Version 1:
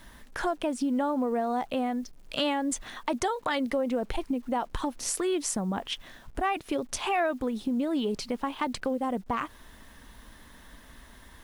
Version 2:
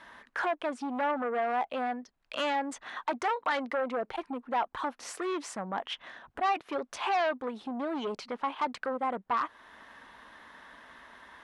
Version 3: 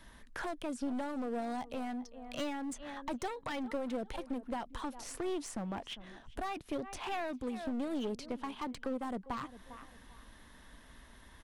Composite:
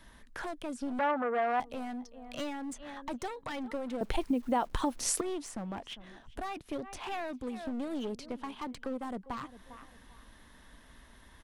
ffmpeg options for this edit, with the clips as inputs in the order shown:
ffmpeg -i take0.wav -i take1.wav -i take2.wav -filter_complex "[2:a]asplit=3[link_01][link_02][link_03];[link_01]atrim=end=0.992[link_04];[1:a]atrim=start=0.988:end=1.602[link_05];[link_02]atrim=start=1.598:end=4.012[link_06];[0:a]atrim=start=4.008:end=5.212[link_07];[link_03]atrim=start=5.208[link_08];[link_04][link_05]acrossfade=duration=0.004:curve1=hsin:curve2=hsin[link_09];[link_09][link_06]acrossfade=duration=0.004:curve1=hsin:curve2=hsin[link_10];[link_10][link_07]acrossfade=duration=0.004:curve1=hsin:curve2=hsin[link_11];[link_11][link_08]acrossfade=duration=0.004:curve1=hsin:curve2=hsin" out.wav

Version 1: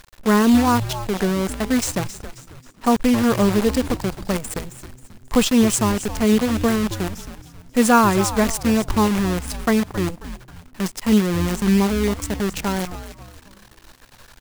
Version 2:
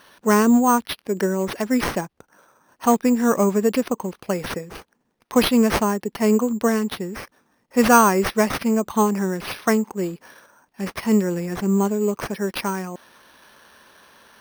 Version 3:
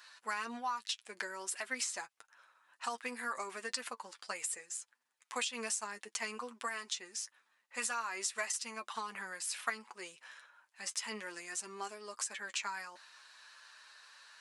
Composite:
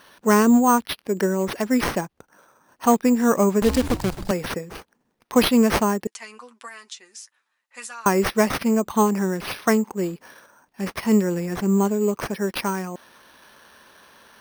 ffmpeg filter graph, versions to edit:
ffmpeg -i take0.wav -i take1.wav -i take2.wav -filter_complex "[1:a]asplit=3[link_01][link_02][link_03];[link_01]atrim=end=3.622[link_04];[0:a]atrim=start=3.618:end=4.312[link_05];[link_02]atrim=start=4.308:end=6.072[link_06];[2:a]atrim=start=6.068:end=8.062[link_07];[link_03]atrim=start=8.058[link_08];[link_04][link_05]acrossfade=duration=0.004:curve1=hsin:curve2=hsin[link_09];[link_09][link_06]acrossfade=duration=0.004:curve1=hsin:curve2=hsin[link_10];[link_10][link_07]acrossfade=duration=0.004:curve1=hsin:curve2=hsin[link_11];[link_11][link_08]acrossfade=duration=0.004:curve1=hsin:curve2=hsin" out.wav

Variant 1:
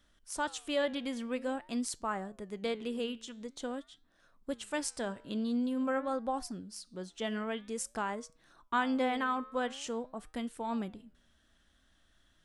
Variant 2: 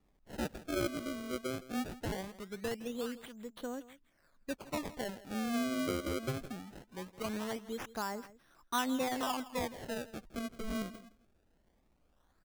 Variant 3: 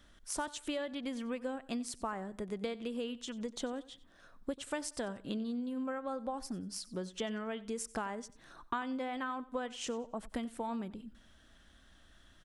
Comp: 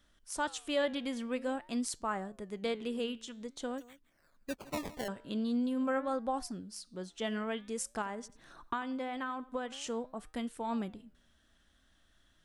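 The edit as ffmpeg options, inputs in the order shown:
ffmpeg -i take0.wav -i take1.wav -i take2.wav -filter_complex "[0:a]asplit=3[link_01][link_02][link_03];[link_01]atrim=end=3.782[link_04];[1:a]atrim=start=3.778:end=5.082[link_05];[link_02]atrim=start=5.078:end=8.022[link_06];[2:a]atrim=start=8.018:end=9.722[link_07];[link_03]atrim=start=9.718[link_08];[link_04][link_05]acrossfade=duration=0.004:curve1=hsin:curve2=hsin[link_09];[link_09][link_06]acrossfade=duration=0.004:curve1=hsin:curve2=hsin[link_10];[link_10][link_07]acrossfade=duration=0.004:curve1=hsin:curve2=hsin[link_11];[link_11][link_08]acrossfade=duration=0.004:curve1=hsin:curve2=hsin" out.wav

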